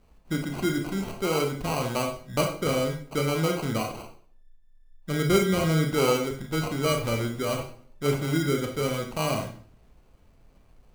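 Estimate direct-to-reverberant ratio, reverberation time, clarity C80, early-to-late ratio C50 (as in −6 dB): 2.0 dB, 0.50 s, 11.0 dB, 6.5 dB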